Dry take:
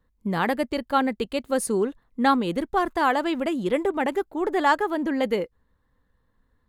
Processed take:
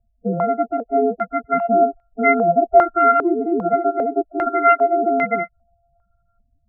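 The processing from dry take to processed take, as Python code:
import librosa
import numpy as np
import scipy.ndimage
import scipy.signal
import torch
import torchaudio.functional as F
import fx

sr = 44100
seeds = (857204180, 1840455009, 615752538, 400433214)

y = np.r_[np.sort(x[:len(x) // 64 * 64].reshape(-1, 64), axis=1).ravel(), x[len(x) // 64 * 64:]]
y = fx.spec_topn(y, sr, count=8)
y = fx.filter_held_lowpass(y, sr, hz=2.5, low_hz=420.0, high_hz=2100.0)
y = F.gain(torch.from_numpy(y), 4.0).numpy()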